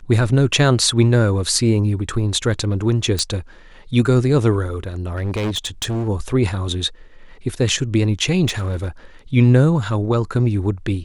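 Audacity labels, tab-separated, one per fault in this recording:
3.190000	3.190000	pop -6 dBFS
5.160000	6.090000	clipped -18.5 dBFS
8.470000	8.890000	clipped -17.5 dBFS

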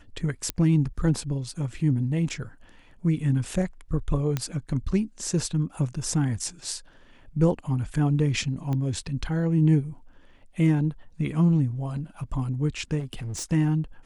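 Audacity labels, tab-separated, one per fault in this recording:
0.500000	0.500000	pop -11 dBFS
4.370000	4.370000	pop -13 dBFS
8.730000	8.730000	pop -19 dBFS
12.990000	13.440000	clipped -29.5 dBFS

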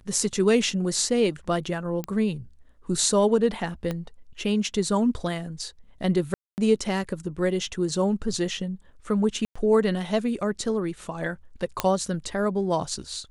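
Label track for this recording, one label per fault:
2.040000	2.040000	pop -16 dBFS
3.910000	3.910000	pop -16 dBFS
6.340000	6.580000	dropout 239 ms
9.450000	9.550000	dropout 105 ms
11.800000	11.800000	pop -7 dBFS

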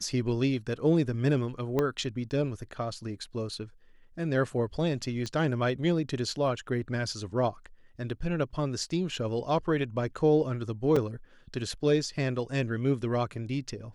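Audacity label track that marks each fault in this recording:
1.790000	1.790000	pop -15 dBFS
5.260000	5.260000	pop -23 dBFS
10.960000	10.960000	dropout 4.4 ms

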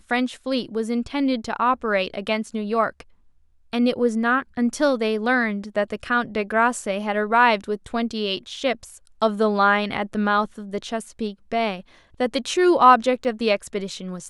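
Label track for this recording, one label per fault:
13.240000	13.250000	dropout 7.3 ms

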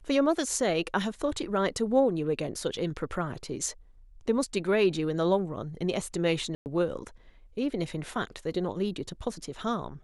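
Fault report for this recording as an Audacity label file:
6.550000	6.660000	dropout 109 ms

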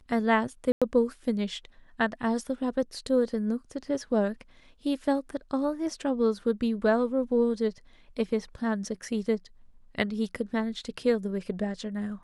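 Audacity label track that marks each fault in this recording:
0.720000	0.820000	dropout 96 ms

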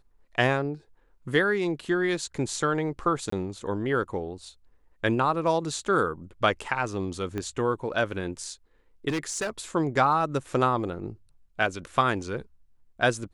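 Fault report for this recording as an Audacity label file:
3.300000	3.320000	dropout 24 ms
7.380000	7.380000	pop -19 dBFS
9.080000	9.500000	clipped -25 dBFS

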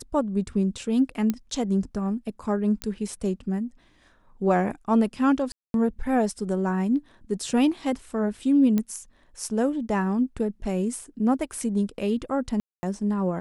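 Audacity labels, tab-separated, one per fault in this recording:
1.300000	1.300000	pop -12 dBFS
2.820000	2.820000	pop -13 dBFS
5.520000	5.740000	dropout 222 ms
8.780000	8.780000	pop -13 dBFS
12.600000	12.830000	dropout 230 ms

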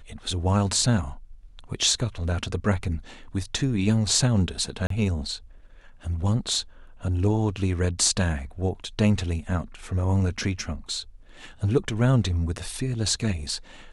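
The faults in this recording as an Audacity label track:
4.870000	4.900000	dropout 33 ms

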